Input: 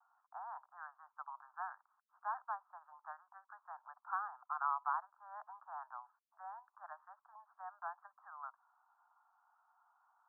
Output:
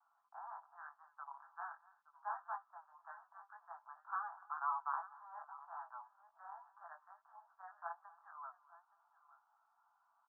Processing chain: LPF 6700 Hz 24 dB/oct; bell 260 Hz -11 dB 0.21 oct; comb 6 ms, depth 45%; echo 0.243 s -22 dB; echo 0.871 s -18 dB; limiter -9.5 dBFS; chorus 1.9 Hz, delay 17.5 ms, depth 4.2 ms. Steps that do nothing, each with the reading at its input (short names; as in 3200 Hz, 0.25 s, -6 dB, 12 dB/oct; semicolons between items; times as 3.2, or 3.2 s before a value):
LPF 6700 Hz: input band ends at 1800 Hz; bell 260 Hz: input band starts at 570 Hz; limiter -9.5 dBFS: input peak -22.5 dBFS